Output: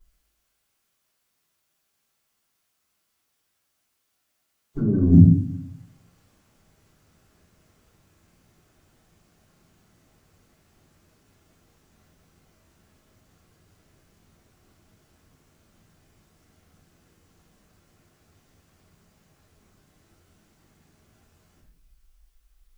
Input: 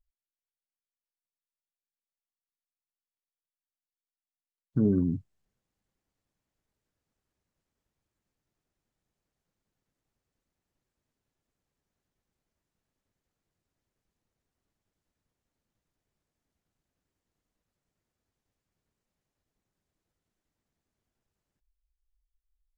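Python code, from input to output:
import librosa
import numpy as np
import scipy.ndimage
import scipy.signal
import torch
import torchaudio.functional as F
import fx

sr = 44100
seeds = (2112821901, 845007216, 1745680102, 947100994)

y = fx.highpass(x, sr, hz=90.0, slope=6)
y = fx.over_compress(y, sr, threshold_db=-31.0, ratio=-0.5)
y = fx.room_shoebox(y, sr, seeds[0], volume_m3=89.0, walls='mixed', distance_m=3.9)
y = F.gain(torch.from_numpy(y), 2.5).numpy()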